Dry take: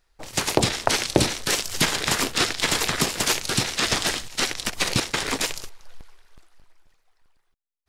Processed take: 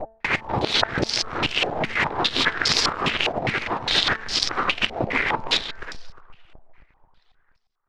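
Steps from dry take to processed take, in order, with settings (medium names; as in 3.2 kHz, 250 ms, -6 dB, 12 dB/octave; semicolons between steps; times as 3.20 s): time reversed locally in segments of 244 ms; de-hum 222.1 Hz, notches 8; compression, threshold -22 dBFS, peak gain reduction 11 dB; delay 353 ms -13 dB; step-sequenced low-pass 4.9 Hz 700–5000 Hz; trim +2 dB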